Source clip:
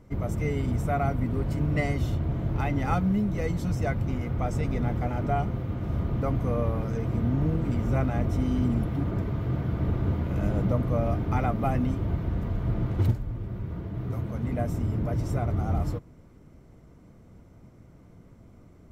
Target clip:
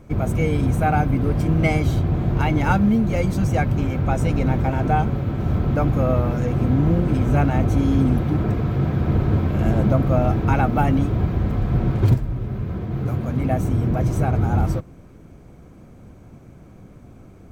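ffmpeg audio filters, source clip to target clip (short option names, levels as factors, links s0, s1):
-af "asetrate=47628,aresample=44100,volume=2.37"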